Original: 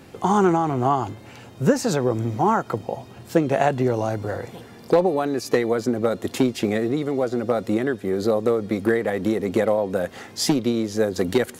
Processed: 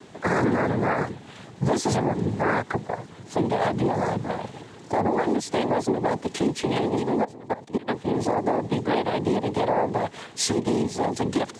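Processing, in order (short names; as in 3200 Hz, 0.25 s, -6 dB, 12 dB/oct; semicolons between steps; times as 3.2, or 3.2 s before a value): 7.24–7.88 level quantiser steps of 20 dB; noise vocoder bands 6; limiter -13.5 dBFS, peak gain reduction 9 dB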